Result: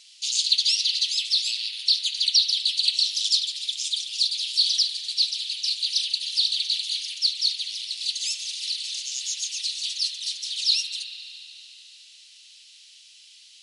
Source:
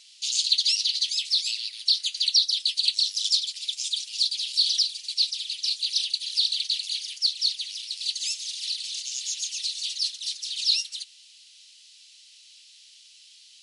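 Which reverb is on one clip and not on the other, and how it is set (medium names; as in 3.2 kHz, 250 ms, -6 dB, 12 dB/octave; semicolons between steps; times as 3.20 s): spring tank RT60 3.4 s, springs 38 ms, chirp 35 ms, DRR 2.5 dB; trim +1 dB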